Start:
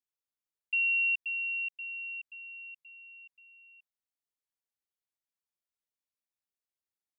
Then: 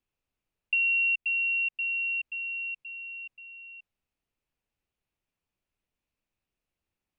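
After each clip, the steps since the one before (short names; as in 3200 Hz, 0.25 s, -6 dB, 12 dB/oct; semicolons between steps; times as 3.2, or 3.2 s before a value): bell 2600 Hz +9 dB 0.44 oct; compressor 2.5:1, threshold -32 dBFS, peak gain reduction 9 dB; tilt -3.5 dB/oct; gain +8.5 dB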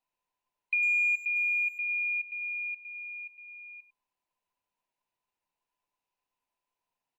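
band inversion scrambler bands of 1000 Hz; speakerphone echo 0.1 s, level -13 dB; gain -2 dB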